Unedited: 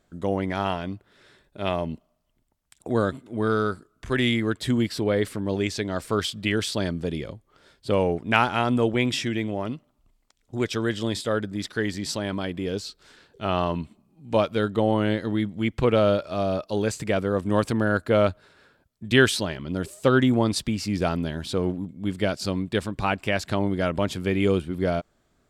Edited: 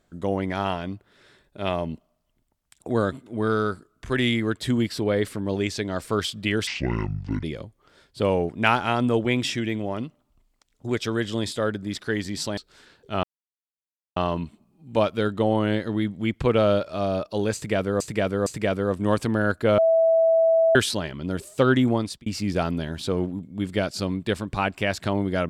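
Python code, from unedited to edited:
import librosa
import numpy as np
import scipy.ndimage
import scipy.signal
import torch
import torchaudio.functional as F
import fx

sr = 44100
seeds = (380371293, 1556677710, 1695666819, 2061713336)

y = fx.edit(x, sr, fx.speed_span(start_s=6.67, length_s=0.45, speed=0.59),
    fx.cut(start_s=12.26, length_s=0.62),
    fx.insert_silence(at_s=13.54, length_s=0.93),
    fx.repeat(start_s=16.92, length_s=0.46, count=3),
    fx.bleep(start_s=18.24, length_s=0.97, hz=655.0, db=-15.0),
    fx.fade_out_span(start_s=20.35, length_s=0.37), tone=tone)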